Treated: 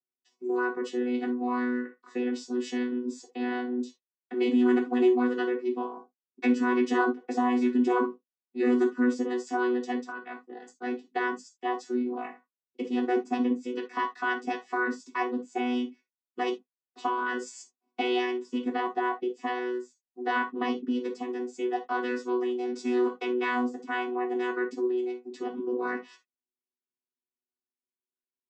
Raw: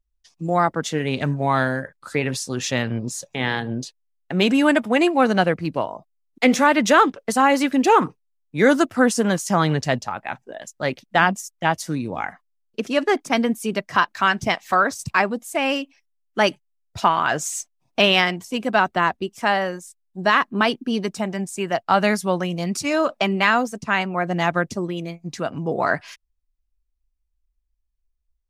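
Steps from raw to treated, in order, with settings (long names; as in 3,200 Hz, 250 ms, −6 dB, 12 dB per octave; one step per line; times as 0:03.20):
channel vocoder with a chord as carrier bare fifth, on B3
downward compressor 1.5 to 1, threshold −26 dBFS, peak gain reduction 6.5 dB
reverb whose tail is shaped and stops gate 100 ms falling, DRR 1 dB
level −6.5 dB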